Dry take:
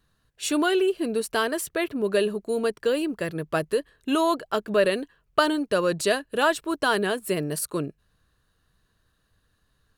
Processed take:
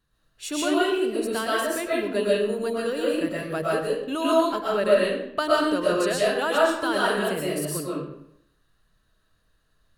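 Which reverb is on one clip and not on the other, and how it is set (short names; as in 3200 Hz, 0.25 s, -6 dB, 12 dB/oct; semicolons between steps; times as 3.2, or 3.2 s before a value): digital reverb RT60 0.74 s, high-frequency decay 0.75×, pre-delay 85 ms, DRR -6 dB; gain -6 dB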